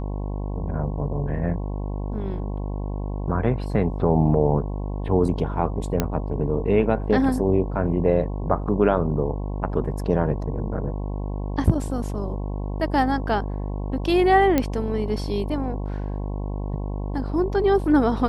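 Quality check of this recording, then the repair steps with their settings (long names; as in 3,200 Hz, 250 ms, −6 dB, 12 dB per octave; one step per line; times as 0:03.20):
mains buzz 50 Hz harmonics 22 −28 dBFS
0:06.00: click −7 dBFS
0:14.58: click −7 dBFS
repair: click removal
hum removal 50 Hz, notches 22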